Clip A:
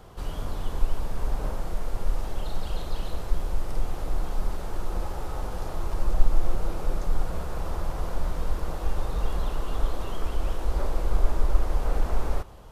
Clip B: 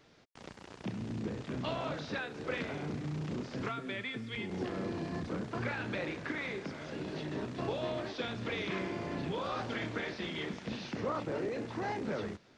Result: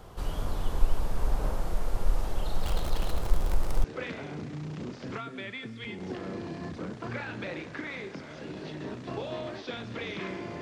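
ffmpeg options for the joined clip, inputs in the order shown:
-filter_complex "[0:a]asettb=1/sr,asplit=3[a][b][c];[a]atrim=end=2.614[d];[b]atrim=start=2.61:end=3.84,asetpts=PTS-STARTPTS,afade=t=in:d=0.004:c=qsin,afade=t=out:st=1.226:d=0.004:c=qsin,aeval=exprs='val(0)+0.5*0.0224*sgn(val(0))':c=same[e];[c]atrim=start=3.836[f];[d][e]acrossfade=d=0.004:c1=hsin:c2=qsin[g];[g][f]acrossfade=d=0.004:c1=qsin:c2=hsin,apad=whole_dur=10.61,atrim=end=10.61,atrim=end=3.842[h];[1:a]atrim=start=2.348:end=9.12[i];[h][i]acrossfade=d=0.004:c1=hsin:c2=hsin"

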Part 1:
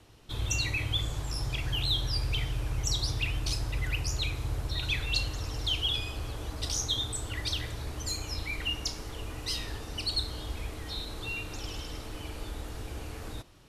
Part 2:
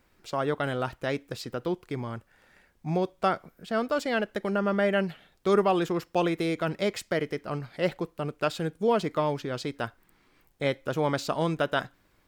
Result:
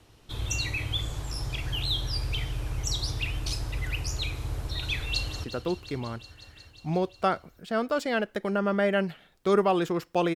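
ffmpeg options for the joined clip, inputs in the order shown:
-filter_complex "[0:a]apad=whole_dur=10.35,atrim=end=10.35,atrim=end=5.442[a];[1:a]atrim=start=1.438:end=6.35[b];[a][b]acrossfade=d=0.004:c1=hsin:c2=hsin,asplit=2[c][d];[d]afade=t=in:st=5.11:d=0.01,afade=t=out:st=5.44:d=0.01,aecho=0:1:180|360|540|720|900|1080|1260|1440|1620|1800|1980|2160:0.237137|0.201567|0.171332|0.145632|0.123787|0.105219|0.0894362|0.0760208|0.0646177|0.054925|0.0466863|0.0396833[e];[c][e]amix=inputs=2:normalize=0"

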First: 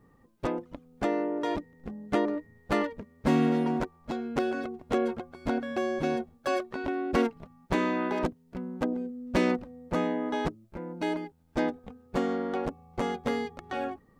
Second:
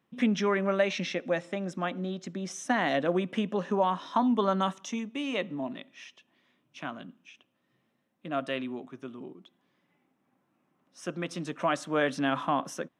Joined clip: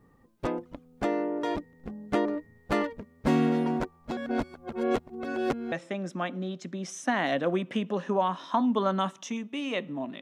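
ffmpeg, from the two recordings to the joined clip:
-filter_complex "[0:a]apad=whole_dur=10.21,atrim=end=10.21,asplit=2[a][b];[a]atrim=end=4.172[c];[b]atrim=start=4.168:end=5.722,asetpts=PTS-STARTPTS,areverse[d];[1:a]atrim=start=1.338:end=5.83[e];[c][d]acrossfade=d=0.004:c1=hsin:c2=hsin[f];[f][e]acrossfade=d=0.004:c1=hsin:c2=hsin"

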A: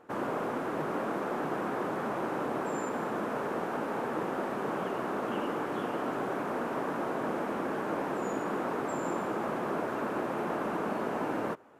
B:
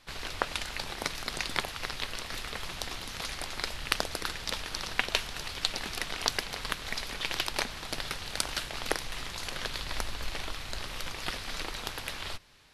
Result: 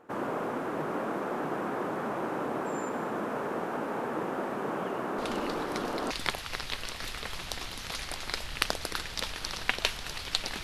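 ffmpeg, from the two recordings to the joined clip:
-filter_complex "[1:a]asplit=2[a][b];[0:a]apad=whole_dur=10.63,atrim=end=10.63,atrim=end=6.112[c];[b]atrim=start=1.408:end=5.93[d];[a]atrim=start=0.48:end=1.41,asetpts=PTS-STARTPTS,volume=-7dB,afade=t=in:d=0.004:c=hsin,afade=t=out:st=0.926:d=0.004:c=hsin,adelay=5180[e];[c][d]acrossfade=d=0.004:c1=hsin:c2=hsin[f];[f][e]amix=inputs=2:normalize=0"

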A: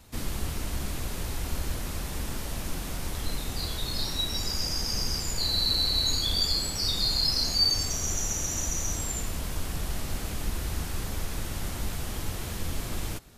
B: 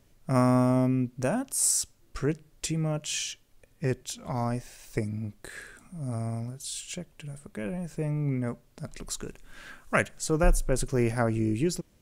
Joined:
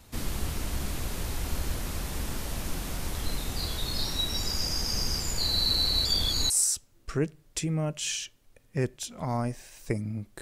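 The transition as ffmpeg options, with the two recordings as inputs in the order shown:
-filter_complex "[0:a]apad=whole_dur=10.41,atrim=end=10.41,asplit=2[a][b];[a]atrim=end=6.052[c];[b]atrim=start=6.048:end=6.502,asetpts=PTS-STARTPTS,areverse[d];[1:a]atrim=start=1.568:end=5.48[e];[c][d]acrossfade=d=0.004:c1=hsin:c2=hsin[f];[f][e]acrossfade=d=0.004:c1=hsin:c2=hsin"

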